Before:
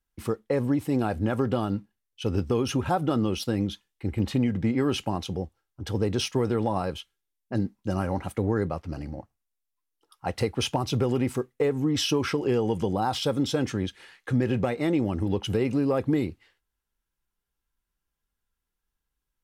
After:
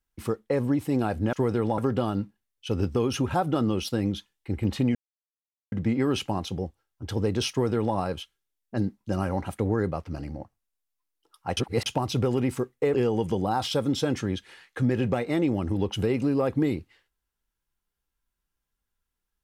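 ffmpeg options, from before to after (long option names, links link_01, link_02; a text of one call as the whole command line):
ffmpeg -i in.wav -filter_complex "[0:a]asplit=7[link_01][link_02][link_03][link_04][link_05][link_06][link_07];[link_01]atrim=end=1.332[link_08];[link_02]atrim=start=6.288:end=6.742[link_09];[link_03]atrim=start=1.328:end=4.5,asetpts=PTS-STARTPTS,afade=type=out:start_time=3.168:duration=0.004:curve=hsin,apad=pad_dur=0.77[link_10];[link_04]atrim=start=4.5:end=10.352,asetpts=PTS-STARTPTS,afade=type=in:duration=0.004:curve=hsin[link_11];[link_05]atrim=start=10.348:end=10.642,asetpts=PTS-STARTPTS,areverse[link_12];[link_06]atrim=start=10.638:end=11.722[link_13];[link_07]atrim=start=12.448[link_14];[link_08][link_09]acrossfade=duration=0.004:curve1=hsin:curve2=hsin[link_15];[link_10][link_11]concat=n=2:v=0:a=1[link_16];[link_15][link_16]acrossfade=duration=0.004:curve1=hsin:curve2=hsin[link_17];[link_17][link_12]acrossfade=duration=0.004:curve1=hsin:curve2=hsin[link_18];[link_18][link_13]acrossfade=duration=0.004:curve1=hsin:curve2=hsin[link_19];[link_19][link_14]acrossfade=duration=0.004:curve1=hsin:curve2=hsin" out.wav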